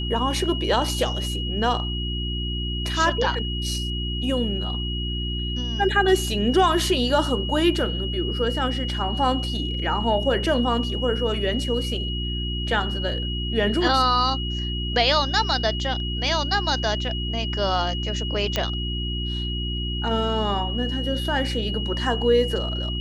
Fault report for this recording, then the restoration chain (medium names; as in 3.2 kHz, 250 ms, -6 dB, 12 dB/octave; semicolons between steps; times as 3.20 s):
hum 60 Hz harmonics 6 -28 dBFS
whine 2.9 kHz -30 dBFS
18.56 s: pop -8 dBFS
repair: de-click; band-stop 2.9 kHz, Q 30; de-hum 60 Hz, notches 6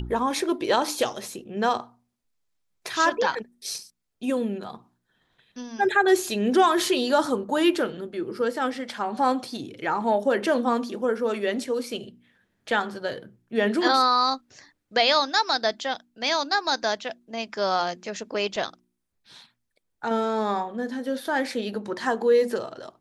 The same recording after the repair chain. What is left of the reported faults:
nothing left